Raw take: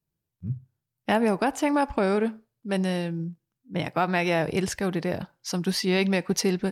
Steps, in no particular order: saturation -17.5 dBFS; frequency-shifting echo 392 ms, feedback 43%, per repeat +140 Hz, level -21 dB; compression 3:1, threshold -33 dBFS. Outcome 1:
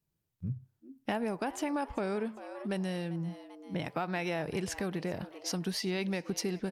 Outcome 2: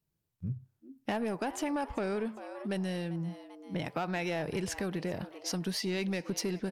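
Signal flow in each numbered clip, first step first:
frequency-shifting echo > compression > saturation; frequency-shifting echo > saturation > compression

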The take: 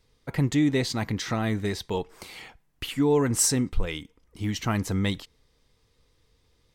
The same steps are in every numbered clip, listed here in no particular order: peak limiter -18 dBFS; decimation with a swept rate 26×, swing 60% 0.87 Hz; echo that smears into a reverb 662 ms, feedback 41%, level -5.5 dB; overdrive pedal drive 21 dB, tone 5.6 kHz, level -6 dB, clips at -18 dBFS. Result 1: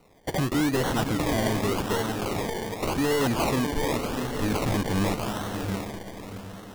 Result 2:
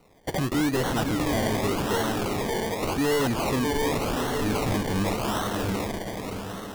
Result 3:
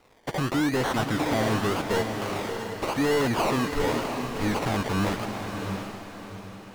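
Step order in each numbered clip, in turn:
overdrive pedal > echo that smears into a reverb > decimation with a swept rate > peak limiter; echo that smears into a reverb > peak limiter > overdrive pedal > decimation with a swept rate; peak limiter > decimation with a swept rate > overdrive pedal > echo that smears into a reverb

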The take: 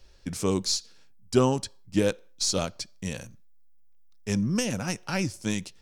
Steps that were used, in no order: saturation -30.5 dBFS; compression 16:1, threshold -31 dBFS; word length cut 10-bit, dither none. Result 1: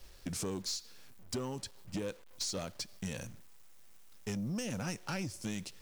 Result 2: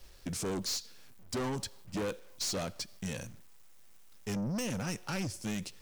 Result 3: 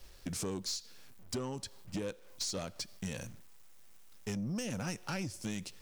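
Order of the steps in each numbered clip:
compression > word length cut > saturation; word length cut > saturation > compression; word length cut > compression > saturation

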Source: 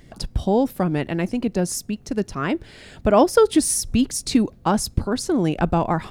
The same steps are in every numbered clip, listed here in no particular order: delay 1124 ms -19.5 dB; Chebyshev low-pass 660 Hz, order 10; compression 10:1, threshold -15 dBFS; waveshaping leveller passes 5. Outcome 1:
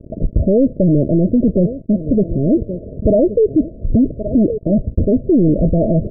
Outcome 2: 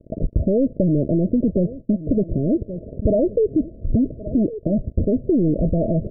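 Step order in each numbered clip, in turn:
compression > delay > waveshaping leveller > Chebyshev low-pass; waveshaping leveller > delay > compression > Chebyshev low-pass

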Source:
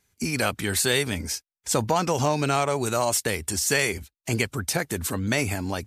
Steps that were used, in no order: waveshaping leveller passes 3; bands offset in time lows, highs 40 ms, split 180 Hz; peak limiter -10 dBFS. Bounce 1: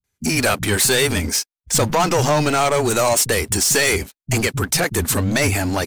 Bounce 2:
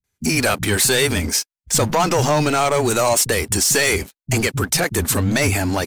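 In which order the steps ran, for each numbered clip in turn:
peak limiter > waveshaping leveller > bands offset in time; waveshaping leveller > peak limiter > bands offset in time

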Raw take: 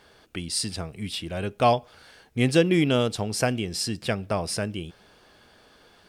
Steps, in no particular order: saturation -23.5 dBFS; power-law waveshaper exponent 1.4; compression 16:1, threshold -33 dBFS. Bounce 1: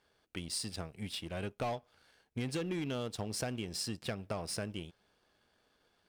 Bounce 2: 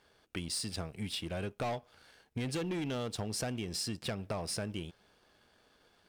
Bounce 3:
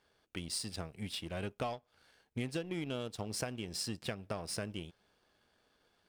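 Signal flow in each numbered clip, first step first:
power-law waveshaper > saturation > compression; saturation > power-law waveshaper > compression; power-law waveshaper > compression > saturation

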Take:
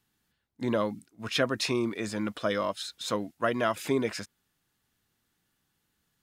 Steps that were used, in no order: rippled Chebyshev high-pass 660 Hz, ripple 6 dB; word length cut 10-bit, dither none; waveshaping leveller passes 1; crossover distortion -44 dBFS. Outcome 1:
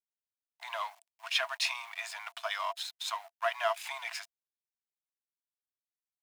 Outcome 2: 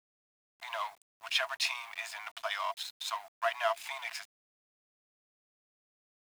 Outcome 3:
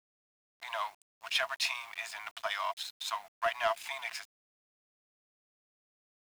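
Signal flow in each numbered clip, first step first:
word length cut > waveshaping leveller > crossover distortion > rippled Chebyshev high-pass; crossover distortion > waveshaping leveller > rippled Chebyshev high-pass > word length cut; crossover distortion > rippled Chebyshev high-pass > waveshaping leveller > word length cut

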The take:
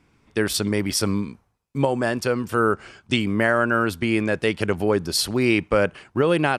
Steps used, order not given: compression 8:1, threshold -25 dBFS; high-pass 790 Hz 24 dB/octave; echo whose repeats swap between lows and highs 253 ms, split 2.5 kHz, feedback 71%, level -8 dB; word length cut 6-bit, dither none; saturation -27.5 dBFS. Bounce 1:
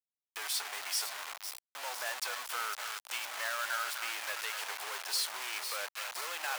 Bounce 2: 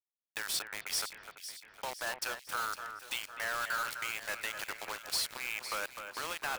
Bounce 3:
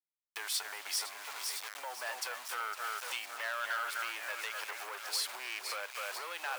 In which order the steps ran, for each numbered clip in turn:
compression > saturation > echo whose repeats swap between lows and highs > word length cut > high-pass; compression > high-pass > word length cut > saturation > echo whose repeats swap between lows and highs; echo whose repeats swap between lows and highs > word length cut > compression > saturation > high-pass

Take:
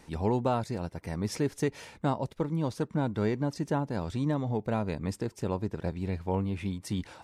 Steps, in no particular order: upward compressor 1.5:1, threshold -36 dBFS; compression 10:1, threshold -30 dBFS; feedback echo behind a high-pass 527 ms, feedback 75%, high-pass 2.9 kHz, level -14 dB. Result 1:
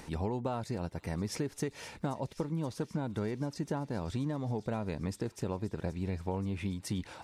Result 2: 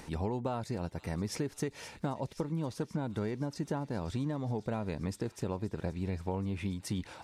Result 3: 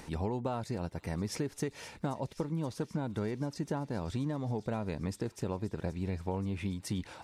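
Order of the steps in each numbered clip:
compression > upward compressor > feedback echo behind a high-pass; upward compressor > feedback echo behind a high-pass > compression; upward compressor > compression > feedback echo behind a high-pass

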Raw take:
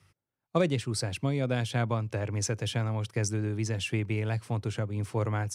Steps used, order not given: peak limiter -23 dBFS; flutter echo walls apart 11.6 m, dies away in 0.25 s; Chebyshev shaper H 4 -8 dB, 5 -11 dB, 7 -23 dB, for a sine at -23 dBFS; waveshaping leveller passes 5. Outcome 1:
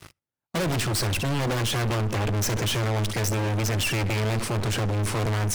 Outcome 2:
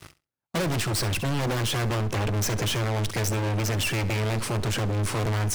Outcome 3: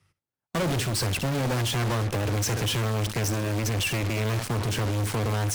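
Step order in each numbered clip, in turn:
Chebyshev shaper > flutter echo > waveshaping leveller > peak limiter; Chebyshev shaper > waveshaping leveller > flutter echo > peak limiter; flutter echo > waveshaping leveller > Chebyshev shaper > peak limiter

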